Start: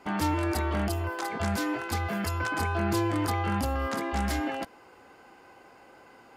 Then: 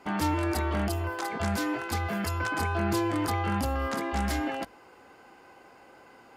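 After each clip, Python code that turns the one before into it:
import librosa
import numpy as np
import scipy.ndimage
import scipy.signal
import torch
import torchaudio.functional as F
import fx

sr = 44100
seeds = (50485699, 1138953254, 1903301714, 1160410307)

y = fx.hum_notches(x, sr, base_hz=50, count=2)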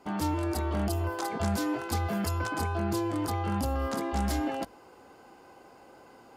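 y = fx.peak_eq(x, sr, hz=2000.0, db=-7.5, octaves=1.4)
y = fx.rider(y, sr, range_db=10, speed_s=0.5)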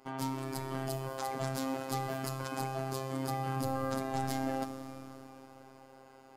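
y = fx.rev_schroeder(x, sr, rt60_s=3.5, comb_ms=29, drr_db=7.0)
y = fx.robotise(y, sr, hz=133.0)
y = F.gain(torch.from_numpy(y), -2.5).numpy()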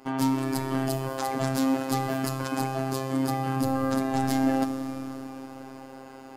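y = fx.rider(x, sr, range_db=4, speed_s=2.0)
y = fx.small_body(y, sr, hz=(270.0, 1700.0, 2700.0), ring_ms=45, db=6)
y = F.gain(torch.from_numpy(y), 6.5).numpy()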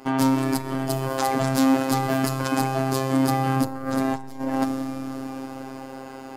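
y = fx.transformer_sat(x, sr, knee_hz=800.0)
y = F.gain(torch.from_numpy(y), 6.5).numpy()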